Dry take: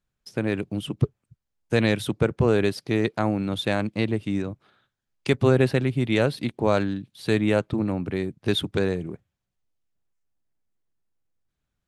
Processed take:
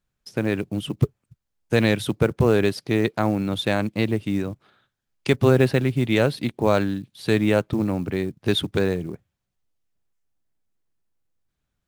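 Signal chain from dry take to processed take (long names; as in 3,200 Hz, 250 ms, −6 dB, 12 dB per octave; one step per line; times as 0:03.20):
floating-point word with a short mantissa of 4 bits
level +2 dB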